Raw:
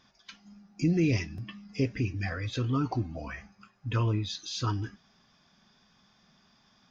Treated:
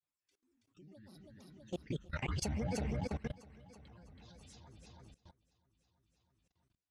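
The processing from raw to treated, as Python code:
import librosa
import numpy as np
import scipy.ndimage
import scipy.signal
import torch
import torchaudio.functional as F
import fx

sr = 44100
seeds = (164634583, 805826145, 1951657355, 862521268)

p1 = fx.doppler_pass(x, sr, speed_mps=15, closest_m=2.1, pass_at_s=2.49)
p2 = fx.granulator(p1, sr, seeds[0], grain_ms=100.0, per_s=20.0, spray_ms=13.0, spread_st=12)
p3 = p2 + fx.echo_feedback(p2, sr, ms=326, feedback_pct=59, wet_db=-7.5, dry=0)
p4 = fx.level_steps(p3, sr, step_db=21)
y = p4 * 10.0 ** (6.0 / 20.0)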